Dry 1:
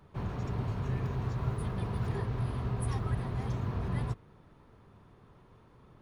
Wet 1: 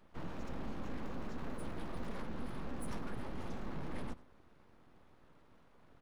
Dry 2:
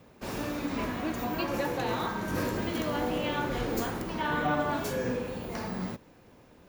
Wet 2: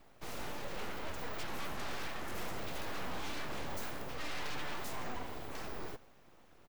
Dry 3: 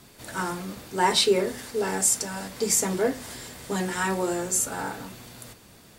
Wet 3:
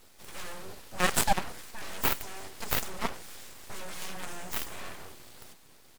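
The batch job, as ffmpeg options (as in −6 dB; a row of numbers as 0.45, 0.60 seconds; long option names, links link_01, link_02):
-filter_complex "[0:a]aeval=exprs='0.376*(cos(1*acos(clip(val(0)/0.376,-1,1)))-cos(1*PI/2))+0.0668*(cos(3*acos(clip(val(0)/0.376,-1,1)))-cos(3*PI/2))+0.0596*(cos(7*acos(clip(val(0)/0.376,-1,1)))-cos(7*PI/2))':channel_layout=same,asplit=2[link_01][link_02];[link_02]adelay=93.29,volume=-19dB,highshelf=frequency=4000:gain=-2.1[link_03];[link_01][link_03]amix=inputs=2:normalize=0,aeval=exprs='abs(val(0))':channel_layout=same"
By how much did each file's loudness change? −11.0, −11.0, −7.5 LU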